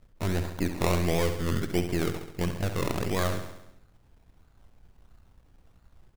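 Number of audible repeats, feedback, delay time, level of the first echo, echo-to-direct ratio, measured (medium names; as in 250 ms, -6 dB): 6, 59%, 68 ms, -9.0 dB, -7.0 dB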